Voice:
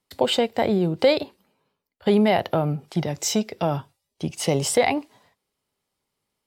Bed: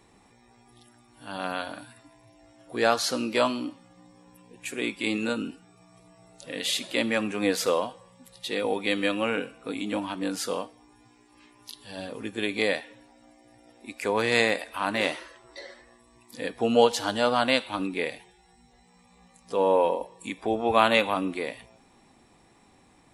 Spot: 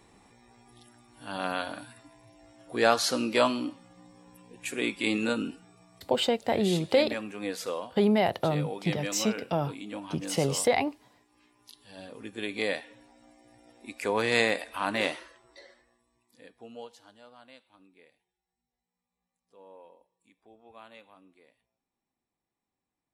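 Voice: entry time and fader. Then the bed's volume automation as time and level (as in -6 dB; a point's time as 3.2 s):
5.90 s, -5.0 dB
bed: 5.66 s 0 dB
6.45 s -9 dB
11.88 s -9 dB
13.08 s -2 dB
15.02 s -2 dB
17.26 s -30 dB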